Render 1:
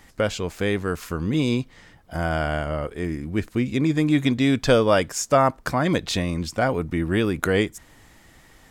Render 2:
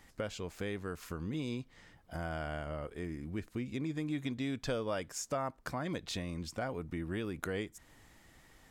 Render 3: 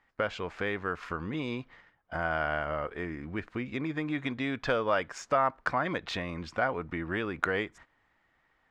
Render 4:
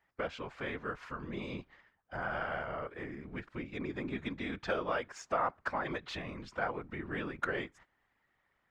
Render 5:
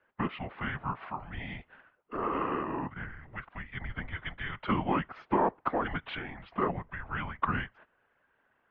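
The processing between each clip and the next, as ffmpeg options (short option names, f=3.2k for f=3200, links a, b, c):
-af "acompressor=threshold=-30dB:ratio=2,volume=-9dB"
-af "agate=range=-17dB:threshold=-55dB:ratio=16:detection=peak,adynamicsmooth=sensitivity=3.5:basefreq=4.3k,equalizer=f=1.4k:w=0.42:g=13.5"
-af "afftfilt=real='hypot(re,im)*cos(2*PI*random(0))':imag='hypot(re,im)*sin(2*PI*random(1))':win_size=512:overlap=0.75"
-af "highpass=f=370:t=q:w=0.5412,highpass=f=370:t=q:w=1.307,lowpass=f=3.5k:t=q:w=0.5176,lowpass=f=3.5k:t=q:w=0.7071,lowpass=f=3.5k:t=q:w=1.932,afreqshift=-310,volume=5.5dB"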